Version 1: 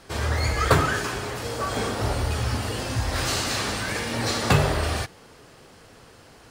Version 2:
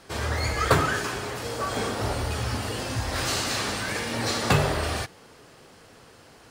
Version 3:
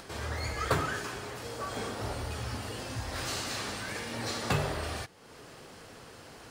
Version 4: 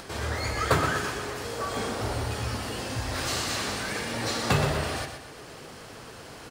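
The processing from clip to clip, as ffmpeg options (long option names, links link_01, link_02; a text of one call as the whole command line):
ffmpeg -i in.wav -af "lowshelf=frequency=72:gain=-7,volume=-1dB" out.wav
ffmpeg -i in.wav -af "acompressor=mode=upward:threshold=-31dB:ratio=2.5,volume=-8dB" out.wav
ffmpeg -i in.wav -af "aecho=1:1:122|244|366|488|610|732:0.398|0.195|0.0956|0.0468|0.023|0.0112,volume=5dB" out.wav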